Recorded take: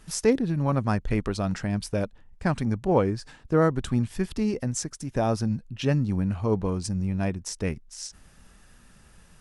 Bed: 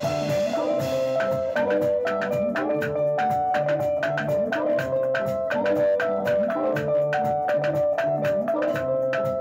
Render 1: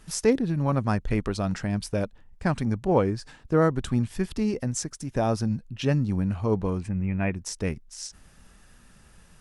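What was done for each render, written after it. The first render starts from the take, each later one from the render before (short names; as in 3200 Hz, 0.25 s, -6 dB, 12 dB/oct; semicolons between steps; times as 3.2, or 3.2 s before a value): 6.8–7.35 resonant high shelf 3400 Hz -13.5 dB, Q 3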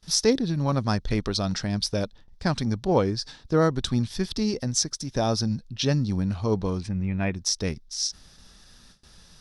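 gate with hold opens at -44 dBFS; band shelf 4500 Hz +12.5 dB 1 oct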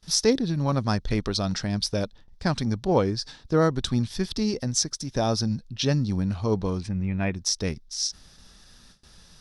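nothing audible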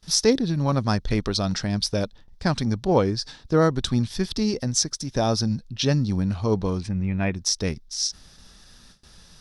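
gain +2 dB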